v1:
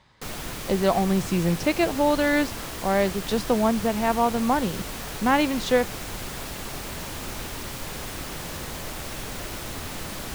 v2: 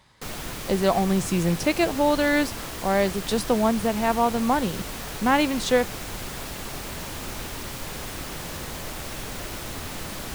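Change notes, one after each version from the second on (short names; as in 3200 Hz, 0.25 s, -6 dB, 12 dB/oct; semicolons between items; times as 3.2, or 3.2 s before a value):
speech: remove air absorption 74 m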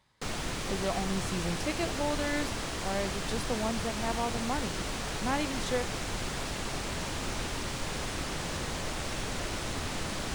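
speech -11.5 dB; background: add polynomial smoothing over 9 samples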